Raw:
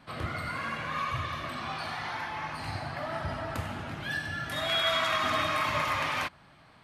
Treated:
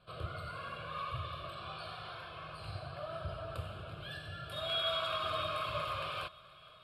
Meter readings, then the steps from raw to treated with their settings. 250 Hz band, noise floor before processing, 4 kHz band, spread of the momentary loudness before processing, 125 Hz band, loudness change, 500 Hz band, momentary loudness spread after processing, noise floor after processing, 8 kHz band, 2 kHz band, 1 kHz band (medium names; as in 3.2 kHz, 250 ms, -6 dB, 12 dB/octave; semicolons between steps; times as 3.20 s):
-13.0 dB, -57 dBFS, -6.0 dB, 9 LU, -6.0 dB, -8.0 dB, -5.5 dB, 12 LU, -57 dBFS, -15.5 dB, -13.0 dB, -8.5 dB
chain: low-pass 9.6 kHz 12 dB/octave; peaking EQ 1.8 kHz -5.5 dB 1.3 oct; static phaser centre 1.3 kHz, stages 8; on a send: thinning echo 470 ms, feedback 76%, high-pass 440 Hz, level -22 dB; on the sum: trim -3.5 dB